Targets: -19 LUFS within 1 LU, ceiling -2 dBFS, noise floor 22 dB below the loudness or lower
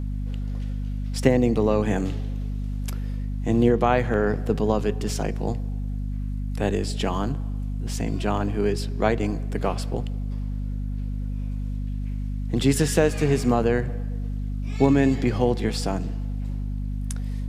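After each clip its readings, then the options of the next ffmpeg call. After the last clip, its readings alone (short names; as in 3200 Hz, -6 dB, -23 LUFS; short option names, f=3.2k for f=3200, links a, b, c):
hum 50 Hz; harmonics up to 250 Hz; hum level -25 dBFS; loudness -25.5 LUFS; peak -3.5 dBFS; loudness target -19.0 LUFS
-> -af "bandreject=f=50:t=h:w=6,bandreject=f=100:t=h:w=6,bandreject=f=150:t=h:w=6,bandreject=f=200:t=h:w=6,bandreject=f=250:t=h:w=6"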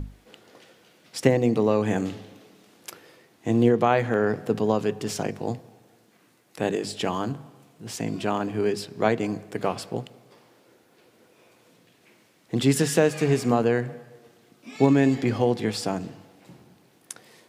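hum none; loudness -24.5 LUFS; peak -5.0 dBFS; loudness target -19.0 LUFS
-> -af "volume=5.5dB,alimiter=limit=-2dB:level=0:latency=1"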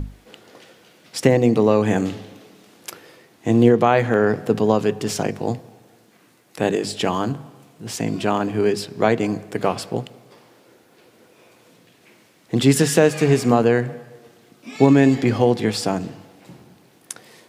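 loudness -19.5 LUFS; peak -2.0 dBFS; noise floor -55 dBFS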